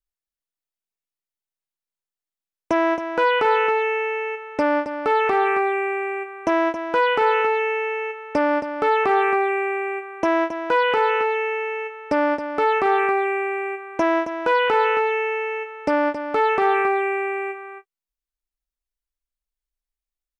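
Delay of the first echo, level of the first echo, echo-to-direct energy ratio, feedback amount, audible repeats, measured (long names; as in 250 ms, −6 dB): 271 ms, −9.5 dB, −9.5 dB, repeats not evenly spaced, 1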